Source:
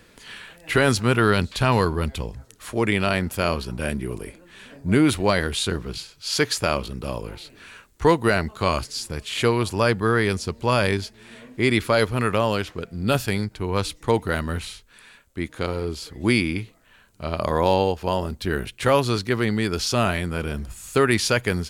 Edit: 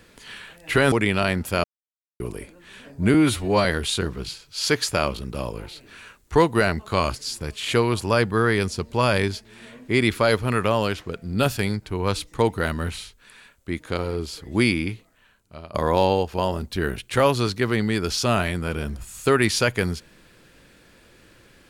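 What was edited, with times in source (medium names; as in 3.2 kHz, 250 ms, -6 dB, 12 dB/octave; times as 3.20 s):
0.92–2.78 s: delete
3.50–4.06 s: mute
5.00–5.34 s: stretch 1.5×
16.53–17.43 s: fade out, to -18 dB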